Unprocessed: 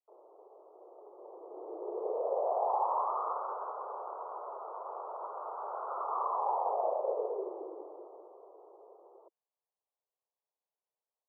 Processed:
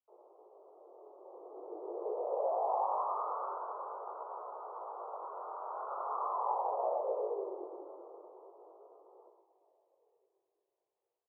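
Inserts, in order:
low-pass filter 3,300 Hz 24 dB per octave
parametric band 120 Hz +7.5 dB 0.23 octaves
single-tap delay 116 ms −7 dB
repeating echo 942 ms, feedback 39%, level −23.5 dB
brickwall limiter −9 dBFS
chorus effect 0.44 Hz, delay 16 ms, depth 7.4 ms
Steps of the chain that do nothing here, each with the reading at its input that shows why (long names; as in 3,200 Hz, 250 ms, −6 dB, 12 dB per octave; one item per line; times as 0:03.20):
low-pass filter 3,300 Hz: nothing at its input above 1,500 Hz
parametric band 120 Hz: nothing at its input below 300 Hz
brickwall limiter −9 dBFS: peak of its input −18.5 dBFS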